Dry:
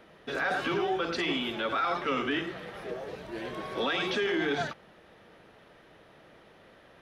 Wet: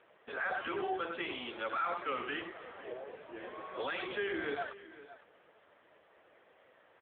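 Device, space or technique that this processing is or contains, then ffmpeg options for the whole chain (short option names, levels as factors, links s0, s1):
satellite phone: -filter_complex "[0:a]asettb=1/sr,asplit=3[s0][s1][s2];[s0]atrim=end=1.724[s3];[s1]atrim=start=1.72:end=3.13,asetpts=PTS-STARTPTS,afade=t=in:d=0.004:c=qsin,afade=t=out:st=1.406:d=0.004:c=qsin,lowpass=f=5400:w=0.5412,lowpass=f=5400:w=1.3066[s4];[s2]atrim=start=3.126[s5];[s3][s4]acrossfade=d=0.004:c1=hsin:c2=qsin[s6];[s6][s5]acrossfade=d=0.004:c1=qsin:c2=hsin,highpass=390,lowpass=3300,aecho=1:1:509:0.15,volume=0.668" -ar 8000 -c:a libopencore_amrnb -b:a 6700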